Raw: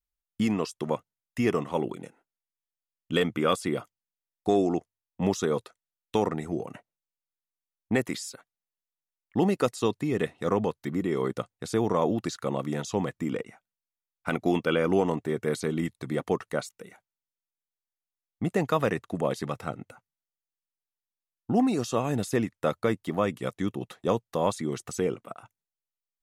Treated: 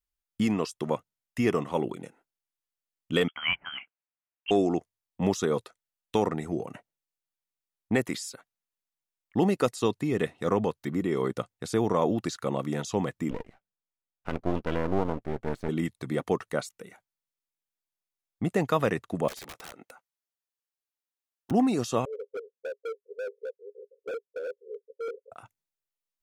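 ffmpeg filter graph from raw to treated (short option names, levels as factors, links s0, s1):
-filter_complex "[0:a]asettb=1/sr,asplit=3[s0][s1][s2];[s0]atrim=end=3.284[s3];[s1]atrim=start=3.28:end=4.51,asetpts=PTS-STARTPTS,afade=t=in:d=0.004:c=qsin,afade=t=out:st=1.226:d=0.004:c=qsin,highpass=740,lowpass=f=3000:t=q:w=0.5098,lowpass=f=3000:t=q:w=0.6013,lowpass=f=3000:t=q:w=0.9,lowpass=f=3000:t=q:w=2.563,afreqshift=-3500[s4];[s2]atrim=start=4.506[s5];[s3][s4]acrossfade=d=0.004:c1=hsin:c2=qsin[s6];[s6][s5]acrossfade=d=0.004:c1=qsin:c2=hsin,asettb=1/sr,asplit=3[s7][s8][s9];[s7]atrim=end=13.304[s10];[s8]atrim=start=13.3:end=15.69,asetpts=PTS-STARTPTS,afade=t=in:d=0.004:c=qsin,afade=t=out:st=2.386:d=0.004:c=qsin,lowpass=f=1000:p=1,aeval=exprs='max(val(0),0)':c=same[s11];[s9]atrim=start=15.686[s12];[s10][s11]acrossfade=d=0.004:c1=hsin:c2=qsin[s13];[s13][s12]acrossfade=d=0.004:c1=qsin:c2=hsin,asettb=1/sr,asplit=3[s14][s15][s16];[s14]atrim=end=19.284[s17];[s15]atrim=start=19.28:end=21.51,asetpts=PTS-STARTPTS,afade=t=in:d=0.004:c=qsin,afade=t=out:st=2.226:d=0.004:c=qsin,highpass=410,acompressor=threshold=0.0141:ratio=3:attack=3.2:release=140:knee=1:detection=peak,aeval=exprs='(mod(59.6*val(0)+1,2)-1)/59.6':c=same[s18];[s16]atrim=start=21.506[s19];[s17][s18]acrossfade=d=0.004:c1=hsin:c2=qsin[s20];[s20][s19]acrossfade=d=0.004:c1=qsin:c2=hsin,asettb=1/sr,asplit=3[s21][s22][s23];[s21]atrim=end=22.054[s24];[s22]atrim=start=22.05:end=25.32,asetpts=PTS-STARTPTS,afade=t=in:d=0.004:c=qsin,afade=t=out:st=3.266:d=0.004:c=qsin,asuperpass=centerf=470:order=12:qfactor=3.4,volume=37.6,asoftclip=hard,volume=0.0266[s25];[s23]atrim=start=25.316[s26];[s24][s25]acrossfade=d=0.004:c1=hsin:c2=qsin[s27];[s27][s26]acrossfade=d=0.004:c1=qsin:c2=hsin"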